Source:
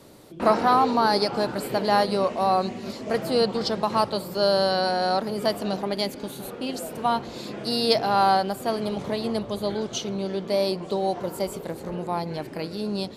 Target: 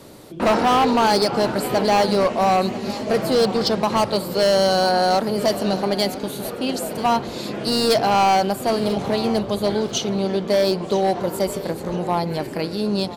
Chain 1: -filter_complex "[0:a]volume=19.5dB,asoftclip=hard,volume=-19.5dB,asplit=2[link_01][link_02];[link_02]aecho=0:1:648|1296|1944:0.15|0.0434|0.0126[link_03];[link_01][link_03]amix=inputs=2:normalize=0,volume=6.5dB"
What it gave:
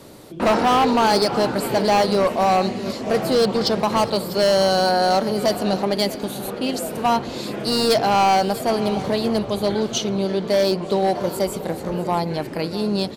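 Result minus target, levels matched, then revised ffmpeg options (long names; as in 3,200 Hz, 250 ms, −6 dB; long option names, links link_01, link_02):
echo 340 ms early
-filter_complex "[0:a]volume=19.5dB,asoftclip=hard,volume=-19.5dB,asplit=2[link_01][link_02];[link_02]aecho=0:1:988|1976|2964:0.15|0.0434|0.0126[link_03];[link_01][link_03]amix=inputs=2:normalize=0,volume=6.5dB"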